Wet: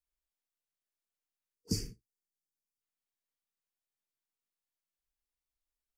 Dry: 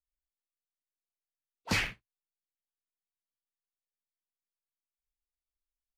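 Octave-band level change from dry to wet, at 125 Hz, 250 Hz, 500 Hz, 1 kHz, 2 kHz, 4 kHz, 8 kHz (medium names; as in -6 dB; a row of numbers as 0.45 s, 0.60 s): 0.0 dB, 0.0 dB, -4.0 dB, under -25 dB, -29.0 dB, -6.5 dB, 0.0 dB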